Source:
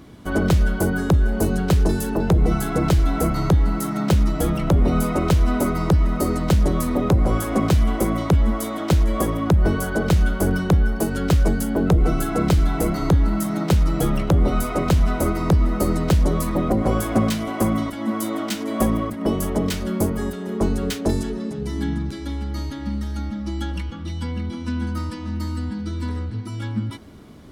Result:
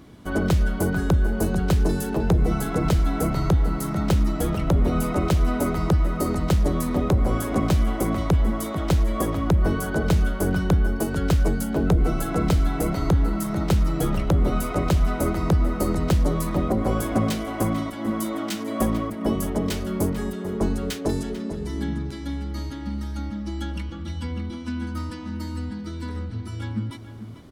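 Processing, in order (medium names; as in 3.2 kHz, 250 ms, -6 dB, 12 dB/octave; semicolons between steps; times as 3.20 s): echo from a far wall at 76 m, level -10 dB; trim -3 dB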